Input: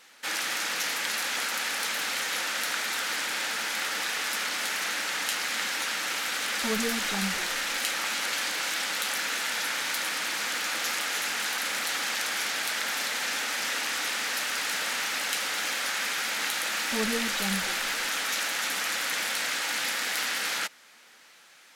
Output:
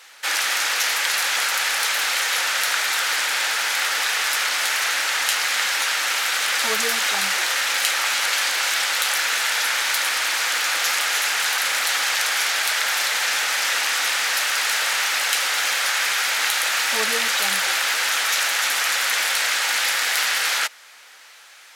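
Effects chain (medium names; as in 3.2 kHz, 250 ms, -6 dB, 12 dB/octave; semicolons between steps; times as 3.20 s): high-pass 590 Hz 12 dB/octave; trim +8.5 dB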